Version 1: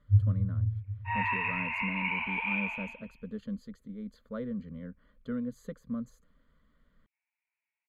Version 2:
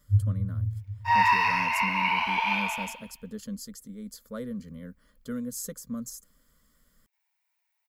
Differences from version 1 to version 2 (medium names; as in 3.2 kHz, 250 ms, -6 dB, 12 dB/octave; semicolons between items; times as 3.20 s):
speech: remove Butterworth band-stop 5.4 kHz, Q 3.5; second sound: remove four-pole ladder low-pass 2.7 kHz, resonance 70%; master: remove distance through air 300 m